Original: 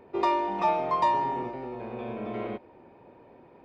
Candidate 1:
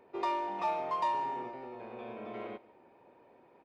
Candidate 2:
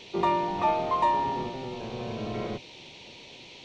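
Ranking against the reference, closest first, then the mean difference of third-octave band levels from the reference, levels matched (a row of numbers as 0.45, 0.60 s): 1, 2; 2.0, 5.0 dB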